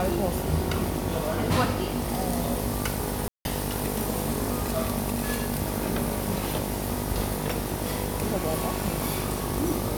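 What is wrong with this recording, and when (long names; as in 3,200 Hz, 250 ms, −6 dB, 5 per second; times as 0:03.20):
mains buzz 50 Hz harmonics 19 −32 dBFS
0:03.28–0:03.45: drop-out 171 ms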